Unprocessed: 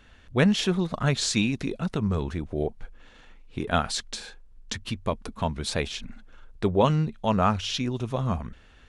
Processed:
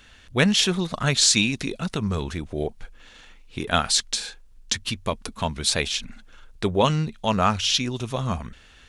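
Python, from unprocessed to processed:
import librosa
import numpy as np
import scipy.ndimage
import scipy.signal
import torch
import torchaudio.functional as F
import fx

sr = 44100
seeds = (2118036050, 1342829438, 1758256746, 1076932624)

y = fx.high_shelf(x, sr, hz=2100.0, db=11.5)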